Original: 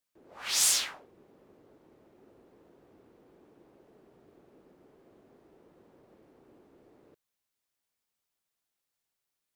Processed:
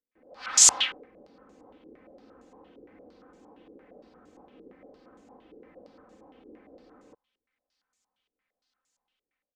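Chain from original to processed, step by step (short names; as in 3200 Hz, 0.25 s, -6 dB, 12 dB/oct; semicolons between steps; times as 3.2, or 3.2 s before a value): comb 3.9 ms, depth 71%; AGC gain up to 9 dB; stepped low-pass 8.7 Hz 410–7000 Hz; gain -6.5 dB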